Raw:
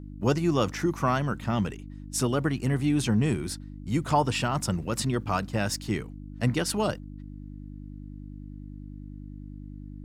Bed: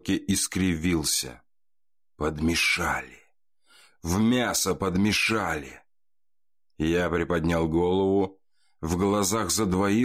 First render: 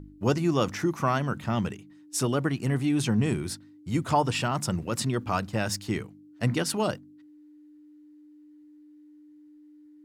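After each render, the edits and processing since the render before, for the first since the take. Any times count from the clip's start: de-hum 50 Hz, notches 5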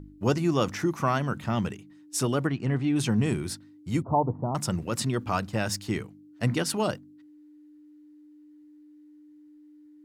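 2.47–2.96 air absorption 140 m; 4.02–4.55 steep low-pass 990 Hz 48 dB/oct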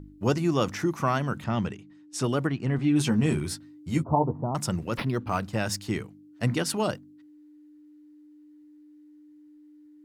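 1.44–2.24 air absorption 56 m; 2.77–4.44 doubler 13 ms -5 dB; 4.97–5.41 decimation joined by straight lines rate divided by 6×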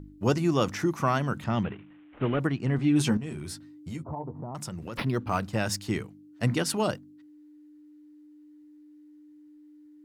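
1.63–2.4 CVSD 16 kbps; 3.17–4.96 compressor 4:1, threshold -34 dBFS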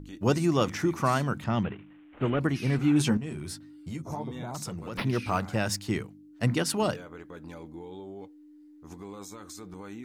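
add bed -19.5 dB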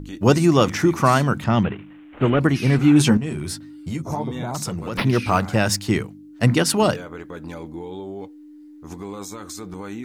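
gain +9 dB; limiter -2 dBFS, peak gain reduction 1 dB

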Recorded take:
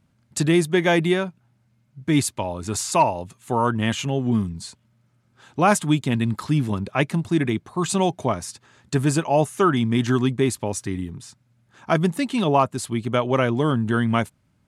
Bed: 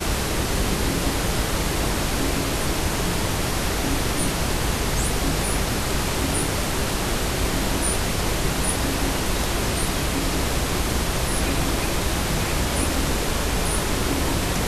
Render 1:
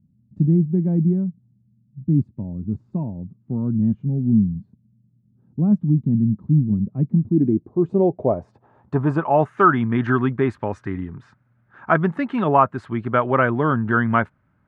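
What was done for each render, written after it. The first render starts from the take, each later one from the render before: low-pass sweep 200 Hz -> 1500 Hz, 7.06–9.47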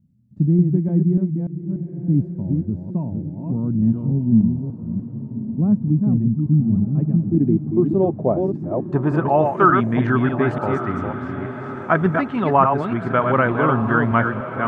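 reverse delay 0.294 s, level -4.5 dB; on a send: diffused feedback echo 1.184 s, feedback 43%, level -11 dB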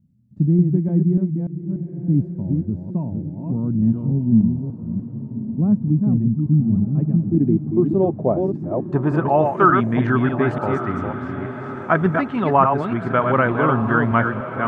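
nothing audible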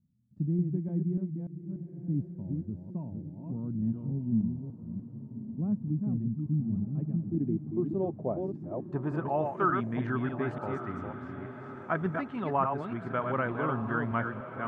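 gain -13 dB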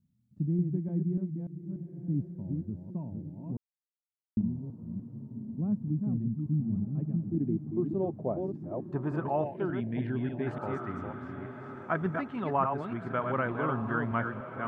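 3.57–4.37 mute; 9.44–10.47 fixed phaser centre 2900 Hz, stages 4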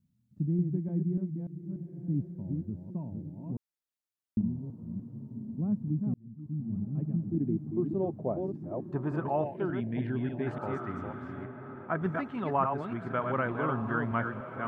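6.14–7 fade in linear; 11.45–12.02 air absorption 370 m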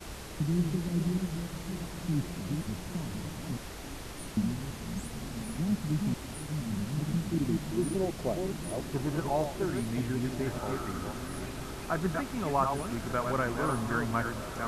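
add bed -19 dB

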